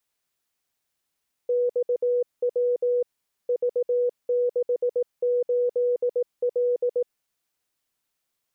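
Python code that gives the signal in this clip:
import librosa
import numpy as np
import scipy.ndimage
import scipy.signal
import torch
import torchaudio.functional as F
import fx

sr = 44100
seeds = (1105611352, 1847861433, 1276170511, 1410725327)

y = fx.morse(sr, text='XW V68L', wpm=18, hz=489.0, level_db=-19.5)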